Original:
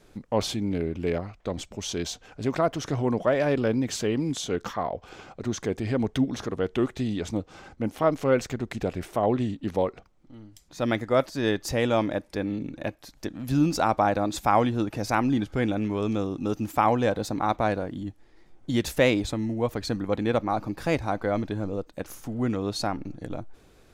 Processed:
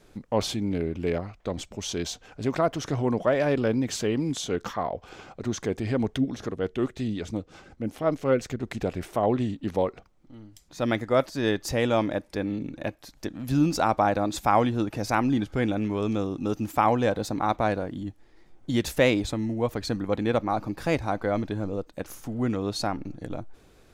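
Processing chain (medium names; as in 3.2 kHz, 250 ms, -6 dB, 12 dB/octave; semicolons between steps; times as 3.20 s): 6.16–8.63 s: rotary cabinet horn 5.5 Hz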